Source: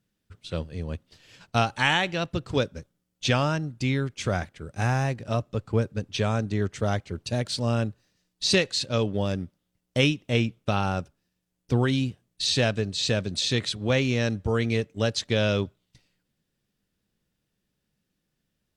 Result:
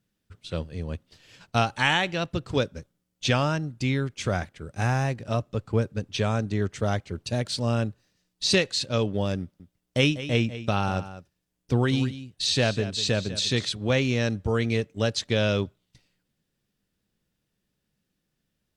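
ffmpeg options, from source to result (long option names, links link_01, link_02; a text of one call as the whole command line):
ffmpeg -i in.wav -filter_complex "[0:a]asettb=1/sr,asplit=3[link_01][link_02][link_03];[link_01]atrim=end=9.404[link_04];[link_02]atrim=start=9.4:end=13.68,asetpts=PTS-STARTPTS,afade=type=in:duration=0.004:curve=qsin,afade=type=out:start_time=4.276:duration=0.004:curve=qsin,aecho=1:1:197:0.211,atrim=end_sample=188748[link_05];[link_03]atrim=start=13.676[link_06];[link_04][link_05]acrossfade=duration=0.004:curve1=hsin:curve2=qsin[link_07];[link_07][link_06]acrossfade=duration=0.004:curve1=qsin:curve2=hsin" out.wav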